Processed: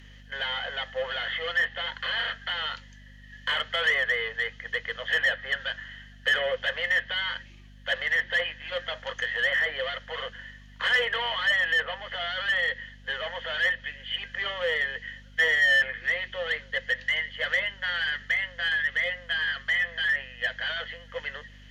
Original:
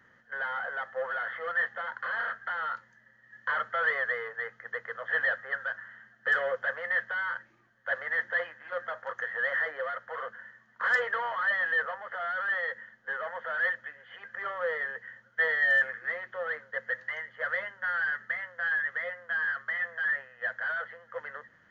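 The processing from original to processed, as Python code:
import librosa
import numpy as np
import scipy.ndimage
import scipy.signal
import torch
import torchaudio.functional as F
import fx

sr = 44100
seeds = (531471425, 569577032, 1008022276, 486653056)

p1 = fx.add_hum(x, sr, base_hz=50, snr_db=21)
p2 = fx.high_shelf_res(p1, sr, hz=2000.0, db=12.0, q=3.0)
p3 = fx.env_lowpass_down(p2, sr, base_hz=2500.0, full_db=-23.5)
p4 = np.clip(p3, -10.0 ** (-24.5 / 20.0), 10.0 ** (-24.5 / 20.0))
y = p3 + F.gain(torch.from_numpy(p4), -6.0).numpy()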